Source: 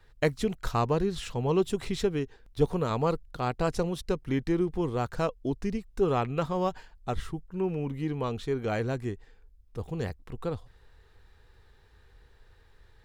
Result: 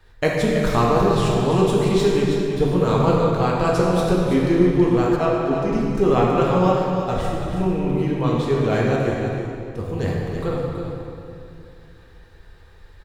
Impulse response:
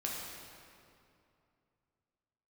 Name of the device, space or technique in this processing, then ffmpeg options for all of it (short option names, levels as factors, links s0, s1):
cave: -filter_complex "[0:a]aecho=1:1:326:0.398[s0];[1:a]atrim=start_sample=2205[s1];[s0][s1]afir=irnorm=-1:irlink=0,asettb=1/sr,asplit=3[s2][s3][s4];[s2]atrim=end=5.164[s5];[s3]atrim=start=5.16:end=5.73,asetpts=PTS-STARTPTS,afade=t=in:d=0.004:c=qsin,afade=t=out:st=0.566:d=0.004:c=qsin,bass=f=250:g=-5,treble=f=4000:g=-7[s6];[s4]atrim=start=5.726[s7];[s5][s6]acrossfade=d=0.004:c1=hsin:c2=qsin[s8];[s8][s7]acrossfade=d=0.004:c1=qsin:c2=hsin,volume=2.24"